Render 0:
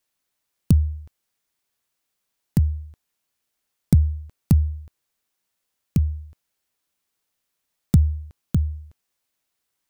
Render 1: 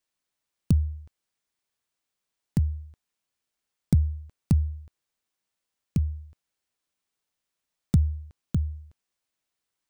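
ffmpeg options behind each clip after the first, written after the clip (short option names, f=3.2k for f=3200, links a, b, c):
-af "equalizer=f=14k:w=1.5:g=-10.5,volume=-5dB"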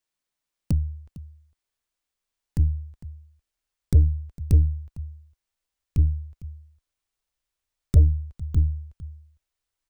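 -af "asubboost=boost=9.5:cutoff=57,aecho=1:1:455:0.126,aeval=exprs='0.596*(cos(1*acos(clip(val(0)/0.596,-1,1)))-cos(1*PI/2))+0.0335*(cos(8*acos(clip(val(0)/0.596,-1,1)))-cos(8*PI/2))':c=same,volume=-1.5dB"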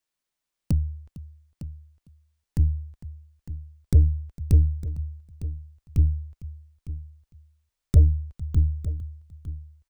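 -af "aecho=1:1:906:0.2"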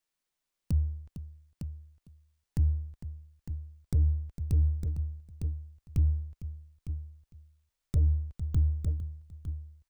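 -af "aeval=exprs='if(lt(val(0),0),0.708*val(0),val(0))':c=same,alimiter=limit=-18.5dB:level=0:latency=1:release=61"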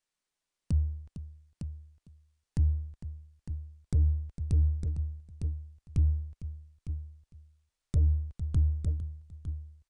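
-af "aresample=22050,aresample=44100"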